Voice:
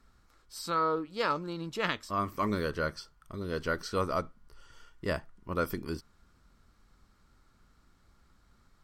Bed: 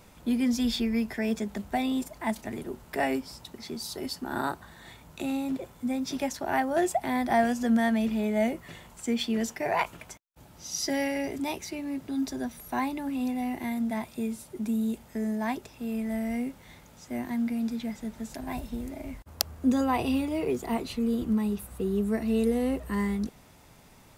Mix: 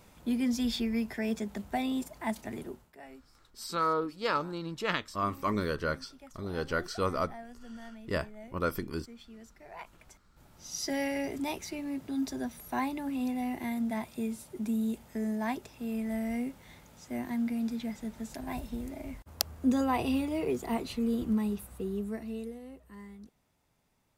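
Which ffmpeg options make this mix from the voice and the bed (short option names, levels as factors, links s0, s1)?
-filter_complex "[0:a]adelay=3050,volume=1[s0];[1:a]volume=6.68,afade=t=out:st=2.64:d=0.29:silence=0.112202,afade=t=in:st=9.69:d=1.48:silence=0.1,afade=t=out:st=21.4:d=1.2:silence=0.141254[s1];[s0][s1]amix=inputs=2:normalize=0"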